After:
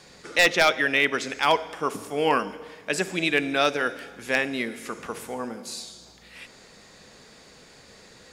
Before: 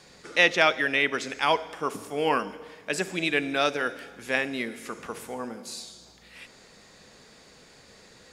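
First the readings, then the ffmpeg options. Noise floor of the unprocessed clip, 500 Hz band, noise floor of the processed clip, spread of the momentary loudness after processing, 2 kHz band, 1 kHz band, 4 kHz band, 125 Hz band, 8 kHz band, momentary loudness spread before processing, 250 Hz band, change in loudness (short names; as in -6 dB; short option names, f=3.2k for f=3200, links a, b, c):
-54 dBFS, +2.0 dB, -51 dBFS, 16 LU, +2.0 dB, +2.5 dB, +2.0 dB, +2.0 dB, +4.0 dB, 17 LU, +2.5 dB, +2.0 dB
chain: -af "aeval=exprs='0.282*(abs(mod(val(0)/0.282+3,4)-2)-1)':c=same,volume=2.5dB"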